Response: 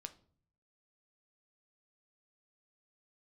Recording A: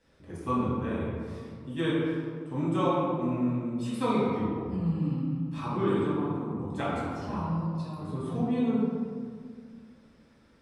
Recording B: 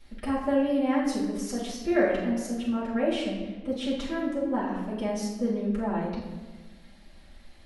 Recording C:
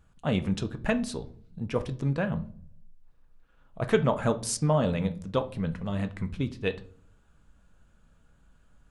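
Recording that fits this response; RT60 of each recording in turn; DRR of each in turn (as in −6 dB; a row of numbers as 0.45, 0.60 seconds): C; 2.0, 1.3, 0.50 seconds; −9.5, −10.0, 8.0 decibels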